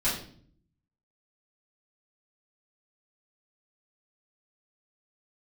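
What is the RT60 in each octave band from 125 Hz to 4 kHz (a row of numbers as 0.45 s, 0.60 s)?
1.0 s, 0.90 s, 0.60 s, 0.45 s, 0.45 s, 0.45 s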